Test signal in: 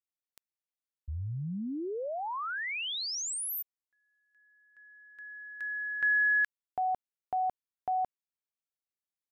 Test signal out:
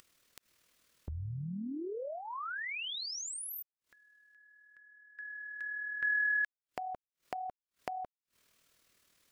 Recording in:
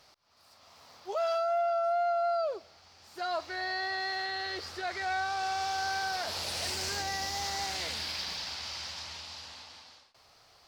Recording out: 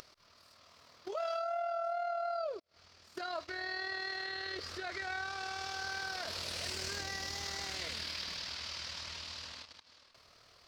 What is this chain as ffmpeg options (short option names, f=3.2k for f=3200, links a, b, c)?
-filter_complex "[0:a]equalizer=f=810:t=o:w=0.31:g=-11,agate=range=-42dB:threshold=-51dB:ratio=16:release=36:detection=peak,highshelf=f=8.1k:g=-7,asplit=2[a][b];[b]acompressor=mode=upward:threshold=-33dB:ratio=4:attack=14:release=101:knee=2.83:detection=peak,volume=1dB[c];[a][c]amix=inputs=2:normalize=0,tremolo=f=39:d=0.462,volume=-8.5dB"